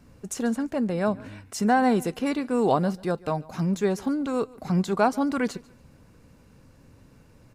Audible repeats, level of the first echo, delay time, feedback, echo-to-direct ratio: 2, −23.0 dB, 143 ms, 27%, −22.5 dB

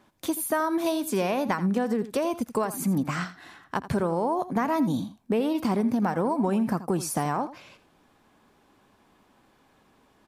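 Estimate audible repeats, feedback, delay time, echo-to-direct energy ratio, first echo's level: 1, repeats not evenly spaced, 83 ms, −14.5 dB, −14.5 dB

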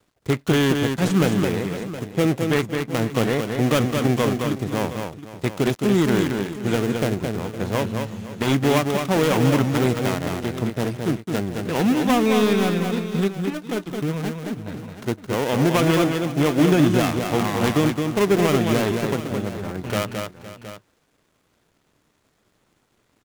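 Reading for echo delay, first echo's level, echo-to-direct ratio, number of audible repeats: 217 ms, −5.0 dB, −4.0 dB, 3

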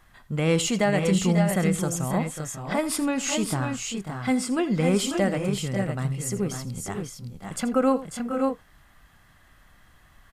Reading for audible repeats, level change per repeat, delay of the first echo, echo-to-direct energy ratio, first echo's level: 2, repeats not evenly spaced, 83 ms, −4.0 dB, −15.5 dB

